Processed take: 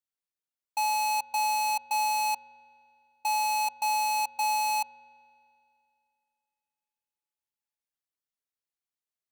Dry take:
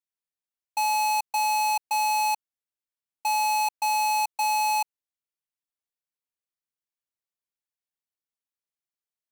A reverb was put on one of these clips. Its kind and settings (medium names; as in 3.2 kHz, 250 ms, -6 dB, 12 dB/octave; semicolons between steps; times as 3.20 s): spring tank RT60 2.6 s, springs 42 ms, chirp 35 ms, DRR 18 dB; trim -2.5 dB